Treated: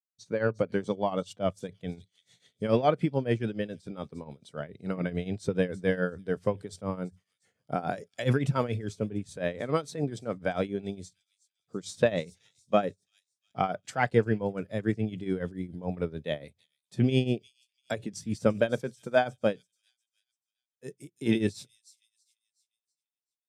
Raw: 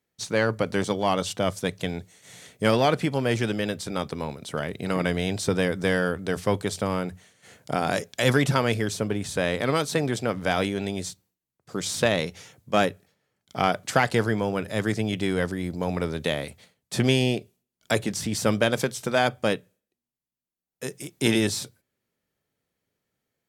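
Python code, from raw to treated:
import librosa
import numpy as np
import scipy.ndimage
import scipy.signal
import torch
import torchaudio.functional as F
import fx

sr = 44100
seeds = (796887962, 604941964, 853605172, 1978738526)

p1 = fx.rattle_buzz(x, sr, strikes_db=-25.0, level_db=-30.0)
p2 = p1 + fx.echo_wet_highpass(p1, sr, ms=346, feedback_pct=53, hz=4900.0, wet_db=-9.0, dry=0)
p3 = fx.tremolo_shape(p2, sr, shape='triangle', hz=7.0, depth_pct=80)
p4 = fx.peak_eq(p3, sr, hz=4000.0, db=6.0, octaves=0.83, at=(1.89, 2.65))
y = fx.spectral_expand(p4, sr, expansion=1.5)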